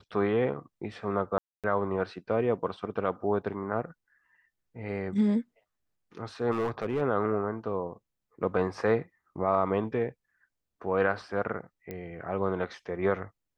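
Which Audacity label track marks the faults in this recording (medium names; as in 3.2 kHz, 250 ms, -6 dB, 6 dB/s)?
1.380000	1.640000	dropout 257 ms
6.510000	7.020000	clipped -24.5 dBFS
11.910000	11.910000	pop -24 dBFS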